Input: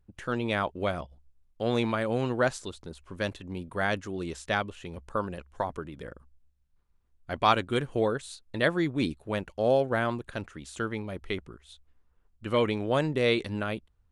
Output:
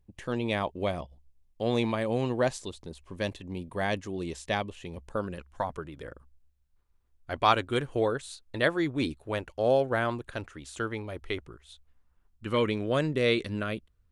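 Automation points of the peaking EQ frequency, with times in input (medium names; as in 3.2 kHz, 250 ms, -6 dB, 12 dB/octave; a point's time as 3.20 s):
peaking EQ -11.5 dB 0.3 oct
5.05 s 1.4 kHz
5.95 s 190 Hz
11.37 s 190 Hz
12.75 s 840 Hz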